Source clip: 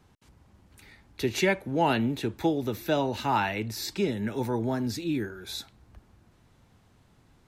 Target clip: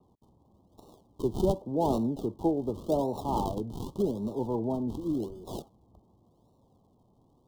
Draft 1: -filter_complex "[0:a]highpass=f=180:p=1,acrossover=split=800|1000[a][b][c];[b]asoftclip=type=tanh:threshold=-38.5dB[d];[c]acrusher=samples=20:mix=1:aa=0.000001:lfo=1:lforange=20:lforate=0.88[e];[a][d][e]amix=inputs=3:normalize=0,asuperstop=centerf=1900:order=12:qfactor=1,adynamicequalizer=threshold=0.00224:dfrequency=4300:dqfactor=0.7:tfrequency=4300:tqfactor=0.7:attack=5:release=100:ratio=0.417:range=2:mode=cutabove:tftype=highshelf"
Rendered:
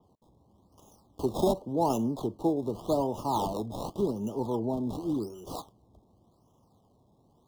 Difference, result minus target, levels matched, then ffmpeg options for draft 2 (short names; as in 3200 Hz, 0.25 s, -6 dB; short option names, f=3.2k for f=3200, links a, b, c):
decimation with a swept rate: distortion -25 dB
-filter_complex "[0:a]highpass=f=180:p=1,acrossover=split=800|1000[a][b][c];[b]asoftclip=type=tanh:threshold=-38.5dB[d];[c]acrusher=samples=53:mix=1:aa=0.000001:lfo=1:lforange=53:lforate=0.88[e];[a][d][e]amix=inputs=3:normalize=0,asuperstop=centerf=1900:order=12:qfactor=1,adynamicequalizer=threshold=0.00224:dfrequency=4300:dqfactor=0.7:tfrequency=4300:tqfactor=0.7:attack=5:release=100:ratio=0.417:range=2:mode=cutabove:tftype=highshelf"